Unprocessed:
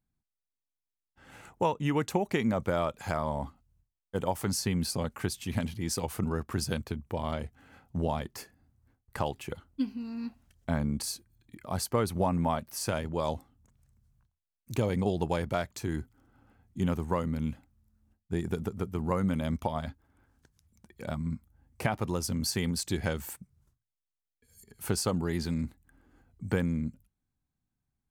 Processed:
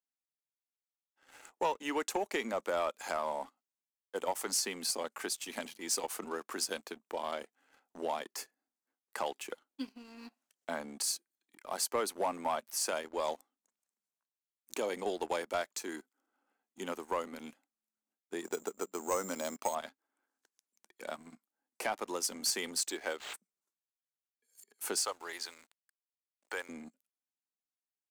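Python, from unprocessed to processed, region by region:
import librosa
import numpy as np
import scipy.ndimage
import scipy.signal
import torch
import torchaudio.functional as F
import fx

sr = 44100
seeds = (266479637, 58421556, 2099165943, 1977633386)

y = fx.chain(x, sr, fx.lowpass(hz=7400.0, slope=12),
    fx.peak_eq(hz=620.0, db=3.0, octaves=1.9),
    fx.resample_bad(factor=6, down='none', up='hold'), at=(18.45, 19.75))
y = fx.chain(y, sr, fx.highpass(hz=290.0, slope=12),
    fx.resample_linear(factor=4), at=(22.9, 23.34))
y = fx.chain(y, sr, fx.highpass(hz=680.0, slope=12),
    fx.high_shelf(hz=9000.0, db=-4.0),
    fx.sample_gate(floor_db=-56.5), at=(24.98, 26.69))
y = scipy.signal.sosfilt(scipy.signal.bessel(8, 450.0, 'highpass', norm='mag', fs=sr, output='sos'), y)
y = fx.peak_eq(y, sr, hz=7200.0, db=5.0, octaves=0.89)
y = fx.leveller(y, sr, passes=2)
y = y * 10.0 ** (-8.0 / 20.0)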